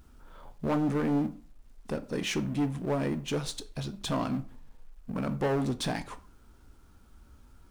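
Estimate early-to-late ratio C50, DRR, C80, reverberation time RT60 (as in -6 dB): 17.5 dB, 11.0 dB, 21.0 dB, 0.40 s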